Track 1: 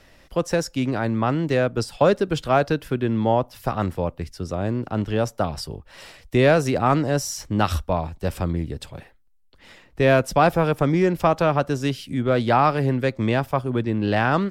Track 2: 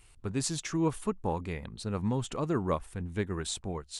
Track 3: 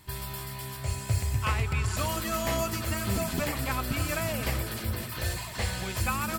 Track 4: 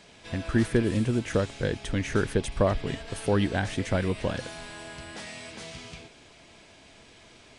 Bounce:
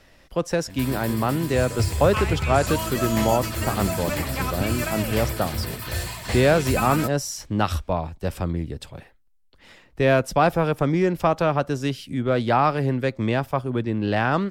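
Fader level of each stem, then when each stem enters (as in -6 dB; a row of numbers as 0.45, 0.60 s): -1.5, -14.0, +3.0, -12.5 dB; 0.00, 1.05, 0.70, 0.35 s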